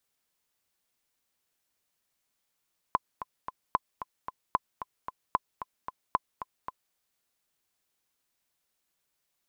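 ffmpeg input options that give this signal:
ffmpeg -f lavfi -i "aevalsrc='pow(10,(-10.5-12*gte(mod(t,3*60/225),60/225))/20)*sin(2*PI*1020*mod(t,60/225))*exp(-6.91*mod(t,60/225)/0.03)':duration=4:sample_rate=44100" out.wav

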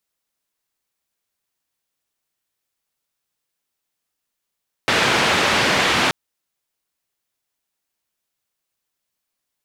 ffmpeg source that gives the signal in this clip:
ffmpeg -f lavfi -i "anoisesrc=color=white:duration=1.23:sample_rate=44100:seed=1,highpass=frequency=97,lowpass=frequency=2800,volume=-4dB" out.wav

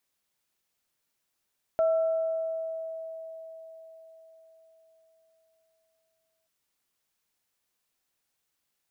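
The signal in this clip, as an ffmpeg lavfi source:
ffmpeg -f lavfi -i "aevalsrc='0.1*pow(10,-3*t/4.79)*sin(2*PI*649*t)+0.015*pow(10,-3*t/1.63)*sin(2*PI*1340*t)':duration=4.68:sample_rate=44100" out.wav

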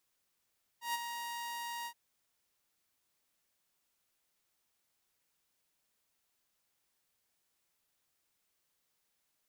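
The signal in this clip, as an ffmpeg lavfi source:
ffmpeg -f lavfi -i "aevalsrc='0.0355*(2*mod(943*t,1)-1)':duration=1.123:sample_rate=44100,afade=type=in:duration=0.131,afade=type=out:start_time=0.131:duration=0.027:silence=0.422,afade=type=out:start_time=1.05:duration=0.073" out.wav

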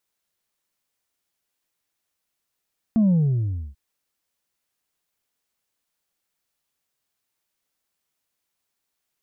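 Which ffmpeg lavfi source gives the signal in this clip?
ffmpeg -f lavfi -i "aevalsrc='0.178*clip((0.79-t)/0.66,0,1)*tanh(1.26*sin(2*PI*230*0.79/log(65/230)*(exp(log(65/230)*t/0.79)-1)))/tanh(1.26)':duration=0.79:sample_rate=44100" out.wav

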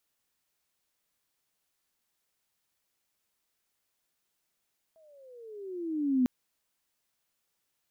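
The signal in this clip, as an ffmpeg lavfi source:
ffmpeg -f lavfi -i "aevalsrc='pow(10,(-20.5+37*(t/1.3-1))/20)*sin(2*PI*655*1.3/(-17*log(2)/12)*(exp(-17*log(2)/12*t/1.3)-1))':duration=1.3:sample_rate=44100" out.wav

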